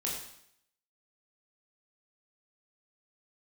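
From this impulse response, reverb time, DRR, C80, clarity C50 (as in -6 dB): 0.70 s, -4.0 dB, 5.5 dB, 3.0 dB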